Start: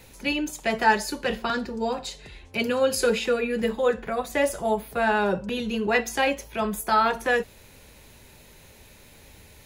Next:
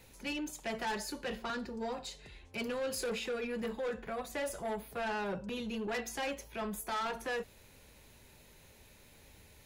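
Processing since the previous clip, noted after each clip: saturation -23.5 dBFS, distortion -9 dB; trim -8.5 dB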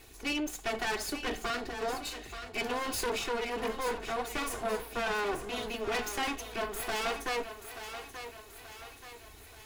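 comb filter that takes the minimum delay 2.7 ms; thinning echo 881 ms, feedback 52%, high-pass 340 Hz, level -9.5 dB; trim +6 dB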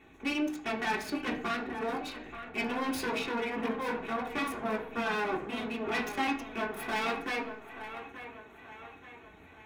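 local Wiener filter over 9 samples; reverberation RT60 0.55 s, pre-delay 3 ms, DRR -1 dB; trim -4.5 dB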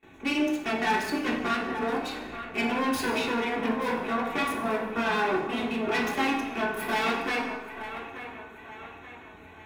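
plate-style reverb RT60 1.1 s, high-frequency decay 0.8×, DRR 3 dB; gate with hold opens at -48 dBFS; trim +3.5 dB

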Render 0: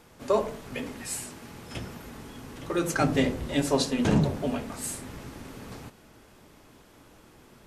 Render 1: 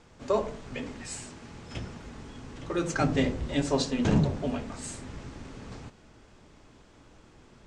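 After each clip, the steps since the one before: steep low-pass 8.1 kHz 36 dB/octave; bass shelf 94 Hz +7.5 dB; trim -2.5 dB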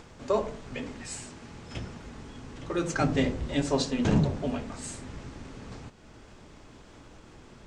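upward compressor, threshold -43 dBFS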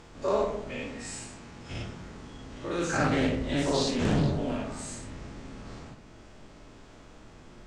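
every event in the spectrogram widened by 120 ms; algorithmic reverb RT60 0.71 s, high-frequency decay 0.5×, pre-delay 0 ms, DRR 4.5 dB; loudspeaker Doppler distortion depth 0.33 ms; trim -6 dB

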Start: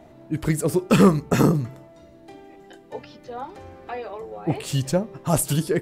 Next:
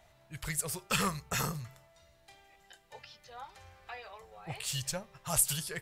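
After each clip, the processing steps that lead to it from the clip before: amplifier tone stack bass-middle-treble 10-0-10; trim -1 dB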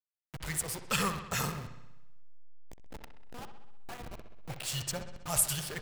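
send-on-delta sampling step -37 dBFS; feedback echo behind a low-pass 64 ms, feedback 62%, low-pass 3.9 kHz, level -10 dB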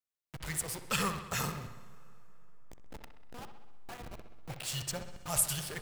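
plate-style reverb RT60 4 s, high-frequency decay 0.6×, DRR 19 dB; trim -1.5 dB

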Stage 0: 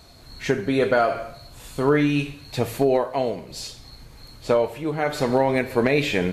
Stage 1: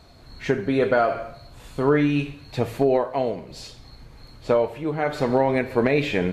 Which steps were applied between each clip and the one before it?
treble shelf 4.8 kHz -11.5 dB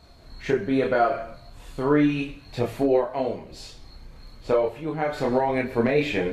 chorus voices 6, 0.32 Hz, delay 28 ms, depth 3.1 ms; trim +1 dB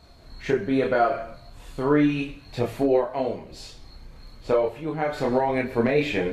no audible change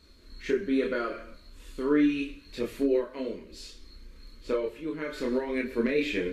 static phaser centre 310 Hz, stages 4; trim -2.5 dB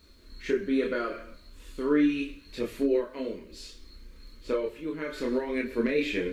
bit crusher 12-bit

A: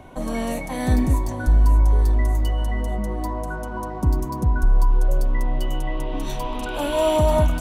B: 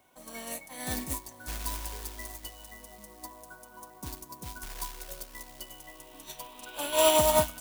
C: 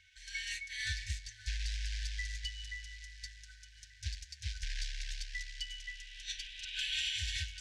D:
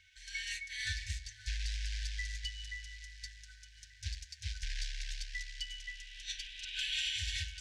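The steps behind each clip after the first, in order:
companded quantiser 6-bit; tilt EQ +3.5 dB/octave; upward expansion 2.5:1, over -31 dBFS
low-pass 5.6 kHz 24 dB/octave; FFT band-reject 100–1500 Hz; compression 8:1, threshold -41 dBFS, peak gain reduction 14 dB; trim +7.5 dB
de-hum 66.91 Hz, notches 28

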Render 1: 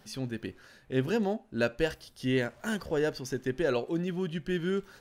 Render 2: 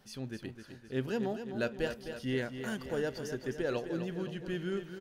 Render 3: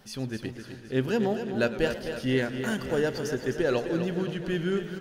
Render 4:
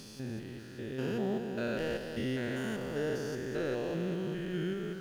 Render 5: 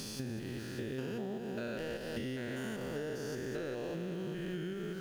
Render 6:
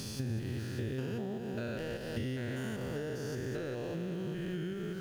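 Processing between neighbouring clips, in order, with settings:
feedback delay 258 ms, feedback 56%, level -9 dB; trim -5.5 dB
modulated delay 112 ms, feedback 77%, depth 160 cents, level -16.5 dB; trim +7.5 dB
spectrogram pixelated in time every 200 ms; in parallel at -11 dB: word length cut 8-bit, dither none; on the sum: trim -6.5 dB
treble shelf 6 kHz +4.5 dB; compression 12:1, threshold -41 dBFS, peak gain reduction 13 dB; trim +5.5 dB
peaking EQ 97 Hz +11.5 dB 0.91 oct

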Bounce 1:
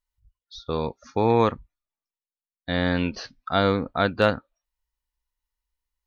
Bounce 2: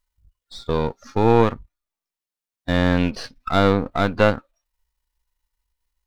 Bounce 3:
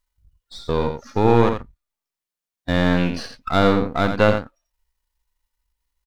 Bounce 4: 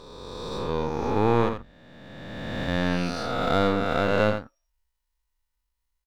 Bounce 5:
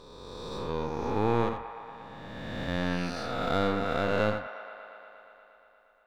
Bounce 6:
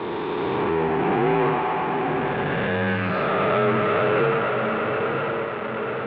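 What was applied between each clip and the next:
partial rectifier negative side -7 dB; harmonic-percussive split harmonic +7 dB; in parallel at -2 dB: compression, threshold -24 dBFS, peak gain reduction 13.5 dB; on the sum: trim -1 dB
delay 85 ms -7.5 dB
reverse spectral sustain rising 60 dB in 2.16 s; trim -8 dB
feedback echo behind a band-pass 118 ms, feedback 80%, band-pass 1.3 kHz, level -11 dB; trim -5 dB
echo that smears into a reverb 901 ms, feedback 40%, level -13 dB; power-law waveshaper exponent 0.35; mistuned SSB -73 Hz 220–2900 Hz

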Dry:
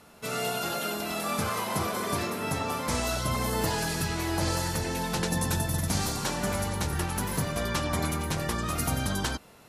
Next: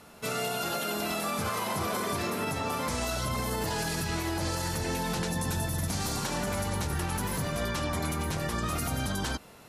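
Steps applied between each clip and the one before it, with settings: peak limiter -24 dBFS, peak gain reduction 8.5 dB; trim +2 dB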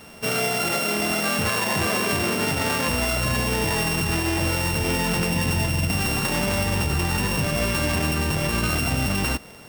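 sorted samples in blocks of 16 samples; trim +8 dB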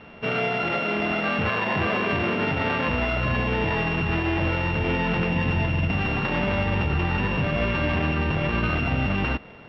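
inverse Chebyshev low-pass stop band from 9.6 kHz, stop band 60 dB

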